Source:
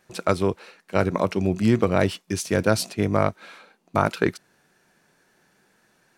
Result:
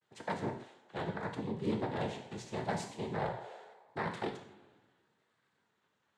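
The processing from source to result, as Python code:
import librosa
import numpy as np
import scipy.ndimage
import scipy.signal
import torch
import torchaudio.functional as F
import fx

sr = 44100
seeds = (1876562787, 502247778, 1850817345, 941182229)

y = scipy.signal.sosfilt(scipy.signal.butter(2, 4900.0, 'lowpass', fs=sr, output='sos'), x)
y = fx.comb_fb(y, sr, f0_hz=220.0, decay_s=1.5, harmonics='all', damping=0.0, mix_pct=70)
y = fx.noise_vocoder(y, sr, seeds[0], bands=6)
y = fx.rev_gated(y, sr, seeds[1], gate_ms=190, shape='falling', drr_db=3.5)
y = fx.vibrato(y, sr, rate_hz=0.79, depth_cents=74.0)
y = y * 10.0 ** (-6.5 / 20.0)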